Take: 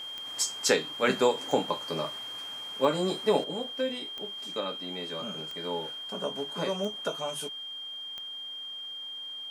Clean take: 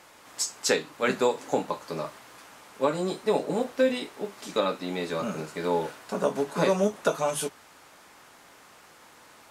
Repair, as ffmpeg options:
-af "adeclick=t=4,bandreject=f=3200:w=30,asetnsamples=n=441:p=0,asendcmd='3.44 volume volume 8dB',volume=1"

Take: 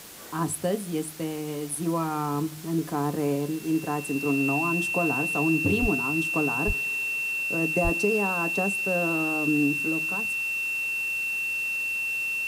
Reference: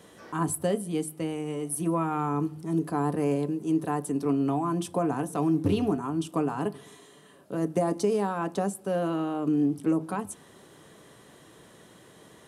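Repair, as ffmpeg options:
-filter_complex "[0:a]bandreject=f=2700:w=30,asplit=3[s0][s1][s2];[s0]afade=t=out:st=5.81:d=0.02[s3];[s1]highpass=f=140:w=0.5412,highpass=f=140:w=1.3066,afade=t=in:st=5.81:d=0.02,afade=t=out:st=5.93:d=0.02[s4];[s2]afade=t=in:st=5.93:d=0.02[s5];[s3][s4][s5]amix=inputs=3:normalize=0,asplit=3[s6][s7][s8];[s6]afade=t=out:st=6.66:d=0.02[s9];[s7]highpass=f=140:w=0.5412,highpass=f=140:w=1.3066,afade=t=in:st=6.66:d=0.02,afade=t=out:st=6.78:d=0.02[s10];[s8]afade=t=in:st=6.78:d=0.02[s11];[s9][s10][s11]amix=inputs=3:normalize=0,asplit=3[s12][s13][s14];[s12]afade=t=out:st=7.83:d=0.02[s15];[s13]highpass=f=140:w=0.5412,highpass=f=140:w=1.3066,afade=t=in:st=7.83:d=0.02,afade=t=out:st=7.95:d=0.02[s16];[s14]afade=t=in:st=7.95:d=0.02[s17];[s15][s16][s17]amix=inputs=3:normalize=0,afwtdn=0.0063,asetnsamples=n=441:p=0,asendcmd='9.86 volume volume 5.5dB',volume=1"

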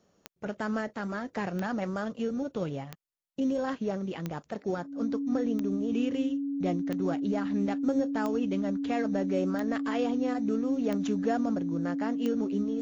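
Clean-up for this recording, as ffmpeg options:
-af "adeclick=t=4,bandreject=f=280:w=30"

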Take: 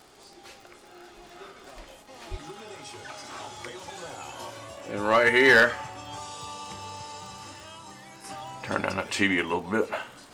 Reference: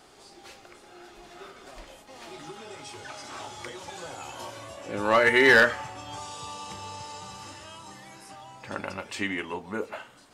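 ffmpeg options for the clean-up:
-filter_complex "[0:a]adeclick=t=4,asplit=3[s0][s1][s2];[s0]afade=t=out:st=2.3:d=0.02[s3];[s1]highpass=f=140:w=0.5412,highpass=f=140:w=1.3066,afade=t=in:st=2.3:d=0.02,afade=t=out:st=2.42:d=0.02[s4];[s2]afade=t=in:st=2.42:d=0.02[s5];[s3][s4][s5]amix=inputs=3:normalize=0,asetnsamples=n=441:p=0,asendcmd='8.24 volume volume -6.5dB',volume=1"

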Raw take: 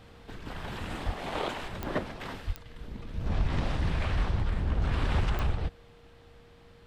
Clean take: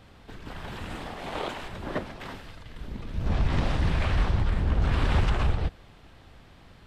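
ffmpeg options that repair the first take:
-filter_complex "[0:a]adeclick=t=4,bandreject=f=470:w=30,asplit=3[s0][s1][s2];[s0]afade=t=out:st=1.05:d=0.02[s3];[s1]highpass=f=140:w=0.5412,highpass=f=140:w=1.3066,afade=t=in:st=1.05:d=0.02,afade=t=out:st=1.17:d=0.02[s4];[s2]afade=t=in:st=1.17:d=0.02[s5];[s3][s4][s5]amix=inputs=3:normalize=0,asplit=3[s6][s7][s8];[s6]afade=t=out:st=2.46:d=0.02[s9];[s7]highpass=f=140:w=0.5412,highpass=f=140:w=1.3066,afade=t=in:st=2.46:d=0.02,afade=t=out:st=2.58:d=0.02[s10];[s8]afade=t=in:st=2.58:d=0.02[s11];[s9][s10][s11]amix=inputs=3:normalize=0,asplit=3[s12][s13][s14];[s12]afade=t=out:st=3.35:d=0.02[s15];[s13]highpass=f=140:w=0.5412,highpass=f=140:w=1.3066,afade=t=in:st=3.35:d=0.02,afade=t=out:st=3.47:d=0.02[s16];[s14]afade=t=in:st=3.47:d=0.02[s17];[s15][s16][s17]amix=inputs=3:normalize=0,asetnsamples=n=441:p=0,asendcmd='2.53 volume volume 4dB',volume=1"

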